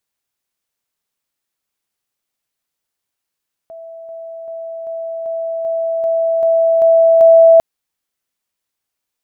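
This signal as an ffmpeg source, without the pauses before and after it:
-f lavfi -i "aevalsrc='pow(10,(-30.5+3*floor(t/0.39))/20)*sin(2*PI*659*t)':d=3.9:s=44100"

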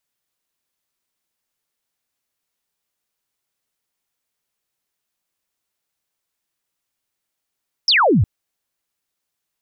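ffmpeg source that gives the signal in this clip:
-f lavfi -i "aevalsrc='0.282*clip(t/0.002,0,1)*clip((0.36-t)/0.002,0,1)*sin(2*PI*5700*0.36/log(80/5700)*(exp(log(80/5700)*t/0.36)-1))':d=0.36:s=44100"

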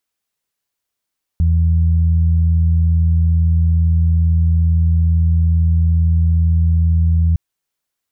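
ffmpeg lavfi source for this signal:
-f lavfi -i "aevalsrc='0.299*sin(2*PI*82.3*t)+0.0841*sin(2*PI*164.6*t)':d=5.96:s=44100"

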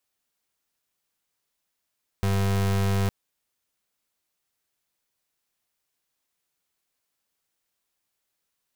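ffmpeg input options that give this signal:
-f lavfi -i "aevalsrc='0.0708*(2*lt(mod(98*t,1),0.34)-1)':d=0.86:s=44100"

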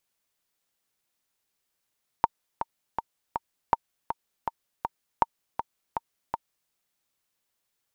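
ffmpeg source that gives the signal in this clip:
-f lavfi -i "aevalsrc='pow(10,(-6-8.5*gte(mod(t,4*60/161),60/161))/20)*sin(2*PI*921*mod(t,60/161))*exp(-6.91*mod(t,60/161)/0.03)':d=4.47:s=44100"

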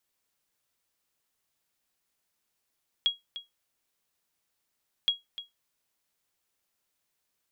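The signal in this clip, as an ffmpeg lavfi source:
-f lavfi -i "aevalsrc='0.15*(sin(2*PI*3300*mod(t,2.02))*exp(-6.91*mod(t,2.02)/0.17)+0.2*sin(2*PI*3300*max(mod(t,2.02)-0.3,0))*exp(-6.91*max(mod(t,2.02)-0.3,0)/0.17))':d=4.04:s=44100"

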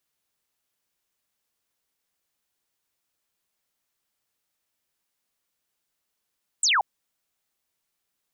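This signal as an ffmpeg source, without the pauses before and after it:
-f lavfi -i "aevalsrc='0.126*clip(t/0.002,0,1)*clip((0.18-t)/0.002,0,1)*sin(2*PI*8500*0.18/log(730/8500)*(exp(log(730/8500)*t/0.18)-1))':d=0.18:s=44100"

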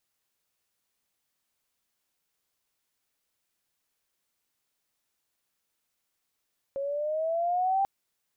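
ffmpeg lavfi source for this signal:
-f lavfi -i "aevalsrc='pow(10,(-22+7*(t/1.09-1))/20)*sin(2*PI*545*1.09/(6.5*log(2)/12)*(exp(6.5*log(2)/12*t/1.09)-1))':d=1.09:s=44100"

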